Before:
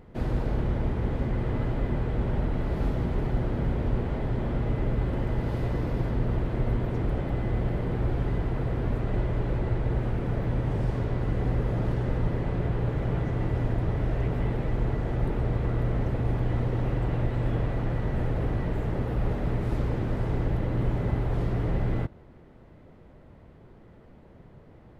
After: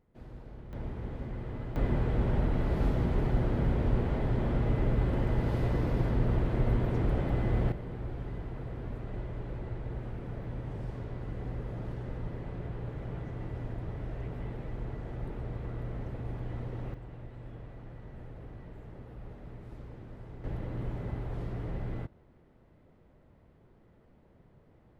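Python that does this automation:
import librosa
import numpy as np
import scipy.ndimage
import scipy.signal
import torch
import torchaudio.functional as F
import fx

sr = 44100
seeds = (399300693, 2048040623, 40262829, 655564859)

y = fx.gain(x, sr, db=fx.steps((0.0, -19.5), (0.73, -10.5), (1.76, -1.0), (7.72, -11.0), (16.94, -18.5), (20.44, -9.5)))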